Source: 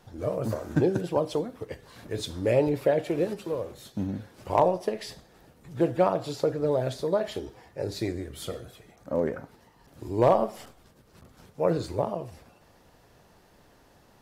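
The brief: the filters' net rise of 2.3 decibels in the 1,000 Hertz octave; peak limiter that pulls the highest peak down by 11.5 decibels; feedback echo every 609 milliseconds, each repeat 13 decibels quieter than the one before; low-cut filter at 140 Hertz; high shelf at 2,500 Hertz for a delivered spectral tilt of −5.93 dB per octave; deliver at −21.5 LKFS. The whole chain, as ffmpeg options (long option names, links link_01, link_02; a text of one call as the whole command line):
ffmpeg -i in.wav -af "highpass=140,equalizer=frequency=1000:width_type=o:gain=3.5,highshelf=frequency=2500:gain=-3.5,alimiter=limit=-18dB:level=0:latency=1,aecho=1:1:609|1218|1827:0.224|0.0493|0.0108,volume=10dB" out.wav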